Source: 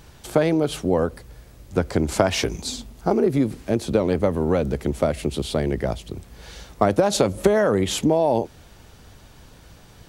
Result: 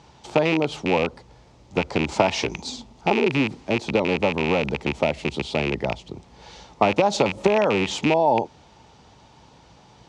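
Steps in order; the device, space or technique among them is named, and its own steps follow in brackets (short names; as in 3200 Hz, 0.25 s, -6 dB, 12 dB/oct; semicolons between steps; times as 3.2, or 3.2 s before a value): car door speaker with a rattle (rattling part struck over -24 dBFS, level -11 dBFS; speaker cabinet 82–6600 Hz, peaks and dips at 91 Hz -6 dB, 880 Hz +10 dB, 1600 Hz -6 dB); gain -2 dB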